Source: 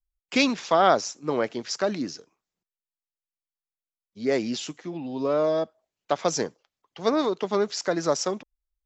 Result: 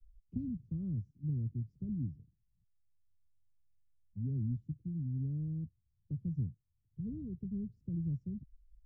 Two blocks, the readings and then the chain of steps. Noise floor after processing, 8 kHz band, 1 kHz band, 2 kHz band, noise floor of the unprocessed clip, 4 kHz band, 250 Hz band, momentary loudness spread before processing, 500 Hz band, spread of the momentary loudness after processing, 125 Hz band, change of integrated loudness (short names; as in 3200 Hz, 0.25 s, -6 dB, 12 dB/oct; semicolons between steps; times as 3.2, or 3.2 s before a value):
-79 dBFS, n/a, under -40 dB, under -40 dB, under -85 dBFS, under -40 dB, -10.0 dB, 12 LU, -35.5 dB, 8 LU, +6.0 dB, -13.5 dB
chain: inverse Chebyshev low-pass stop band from 650 Hz, stop band 80 dB; three-band squash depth 40%; gain +17.5 dB